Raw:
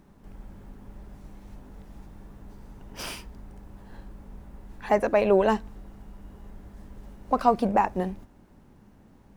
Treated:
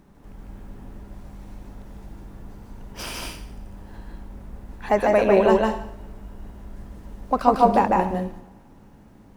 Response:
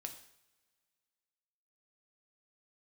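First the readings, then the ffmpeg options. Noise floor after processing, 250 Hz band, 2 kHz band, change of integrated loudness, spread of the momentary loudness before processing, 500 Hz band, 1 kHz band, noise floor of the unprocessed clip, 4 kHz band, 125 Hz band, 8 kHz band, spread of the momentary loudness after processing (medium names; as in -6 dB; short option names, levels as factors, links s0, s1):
-50 dBFS, +4.5 dB, +4.5 dB, +4.0 dB, 18 LU, +4.5 dB, +5.0 dB, -55 dBFS, +5.0 dB, +5.0 dB, +5.0 dB, 19 LU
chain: -filter_complex "[0:a]asplit=2[s0][s1];[1:a]atrim=start_sample=2205,adelay=149[s2];[s1][s2]afir=irnorm=-1:irlink=0,volume=1.41[s3];[s0][s3]amix=inputs=2:normalize=0,volume=1.26"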